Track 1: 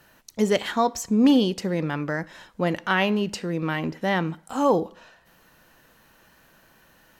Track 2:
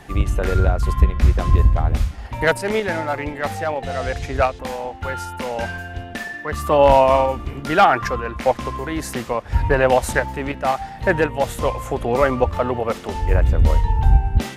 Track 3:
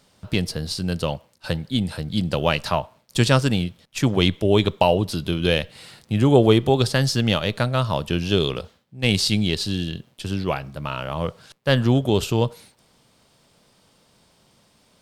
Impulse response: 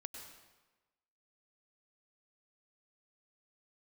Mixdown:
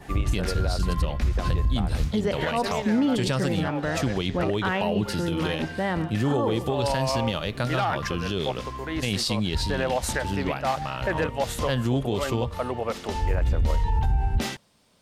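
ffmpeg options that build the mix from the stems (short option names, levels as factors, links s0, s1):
-filter_complex "[0:a]highshelf=f=4400:g=-12,adelay=1750,volume=1,asplit=2[s0][s1];[s1]volume=0.15[s2];[1:a]adynamicequalizer=threshold=0.01:dfrequency=4600:dqfactor=0.92:tfrequency=4600:tqfactor=0.92:attack=5:release=100:ratio=0.375:range=3:mode=boostabove:tftype=bell,volume=0.891[s3];[2:a]volume=0.631,asplit=2[s4][s5];[s5]apad=whole_len=642449[s6];[s3][s6]sidechaincompress=threshold=0.0447:ratio=8:attack=34:release=1340[s7];[s2]aecho=0:1:120:1[s8];[s0][s7][s4][s8]amix=inputs=4:normalize=0,alimiter=limit=0.168:level=0:latency=1:release=57"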